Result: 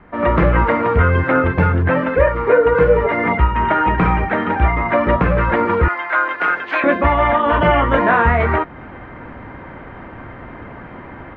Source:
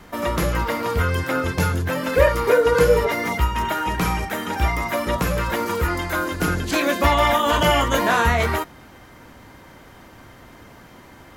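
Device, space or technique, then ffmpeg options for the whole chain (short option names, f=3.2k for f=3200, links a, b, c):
action camera in a waterproof case: -filter_complex "[0:a]asettb=1/sr,asplit=3[a][b][c];[a]atrim=end=5.884[d];[b]atrim=start=5.88:end=6.84,asetpts=PTS-STARTPTS,afade=t=in:d=0.004:c=qsin,afade=t=out:st=0.956:d=0.004:c=qsin,highpass=920[e];[c]atrim=start=6.836[f];[d][e]acrossfade=d=0.004:c1=hsin:c2=qsin[g];[g][f]acrossfade=d=0.004:c1=qsin:c2=hsin,lowpass=f=2.2k:w=0.5412,lowpass=f=2.2k:w=1.3066,dynaudnorm=f=110:g=3:m=12dB,volume=-1dB" -ar 48000 -c:a aac -b:a 96k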